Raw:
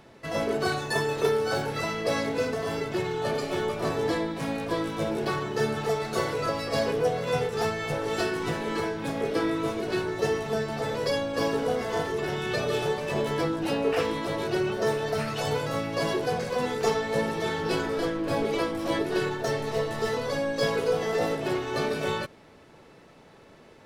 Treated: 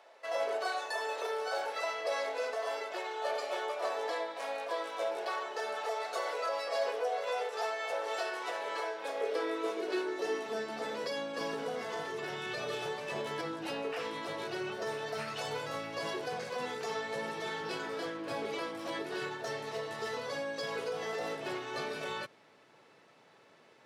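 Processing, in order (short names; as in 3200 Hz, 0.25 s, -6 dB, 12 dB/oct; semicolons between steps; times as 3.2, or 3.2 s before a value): weighting filter A; limiter -21.5 dBFS, peak gain reduction 6.5 dB; high-pass sweep 600 Hz -> 110 Hz, 8.81–12.28; gain -6.5 dB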